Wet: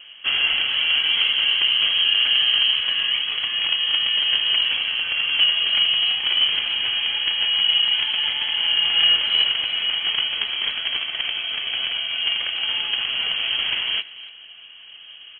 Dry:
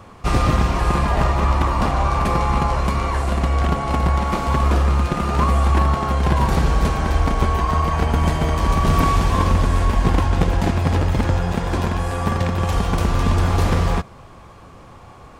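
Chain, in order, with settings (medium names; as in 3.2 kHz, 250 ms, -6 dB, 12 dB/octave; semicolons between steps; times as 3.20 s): median filter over 9 samples; steep high-pass 730 Hz 72 dB/octave; speakerphone echo 290 ms, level -17 dB; frequency inversion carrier 4 kHz; treble shelf 3 kHz +10.5 dB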